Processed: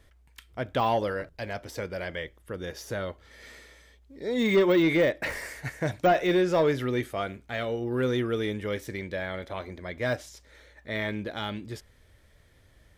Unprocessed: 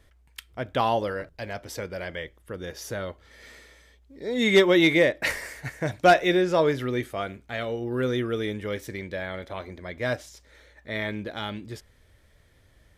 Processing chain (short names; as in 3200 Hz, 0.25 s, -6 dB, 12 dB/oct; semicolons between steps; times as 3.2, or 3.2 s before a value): de-esser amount 90%; soft clip -14 dBFS, distortion -19 dB